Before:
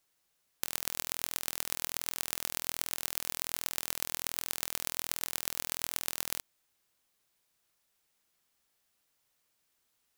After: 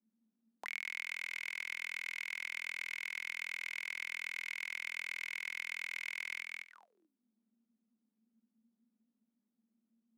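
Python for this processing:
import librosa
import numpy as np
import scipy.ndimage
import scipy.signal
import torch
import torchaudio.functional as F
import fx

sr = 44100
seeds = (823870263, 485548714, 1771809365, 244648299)

p1 = fx.law_mismatch(x, sr, coded='A')
p2 = scipy.signal.sosfilt(scipy.signal.butter(2, 160.0, 'highpass', fs=sr, output='sos'), p1)
p3 = fx.over_compress(p2, sr, threshold_db=-39.0, ratio=-1.0)
p4 = p2 + (p3 * 10.0 ** (-2.5 / 20.0))
p5 = fx.peak_eq(p4, sr, hz=210.0, db=14.5, octaves=0.32)
p6 = p5 + fx.echo_feedback(p5, sr, ms=216, feedback_pct=17, wet_db=-4.0, dry=0)
p7 = fx.auto_wah(p6, sr, base_hz=220.0, top_hz=2200.0, q=18.0, full_db=-42.5, direction='up')
p8 = fx.band_squash(p7, sr, depth_pct=40)
y = p8 * 10.0 ** (11.5 / 20.0)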